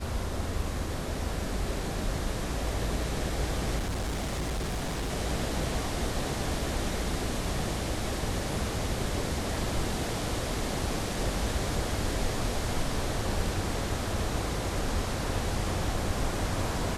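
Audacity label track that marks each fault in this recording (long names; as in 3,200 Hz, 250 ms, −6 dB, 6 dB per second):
3.780000	5.120000	clipping −28 dBFS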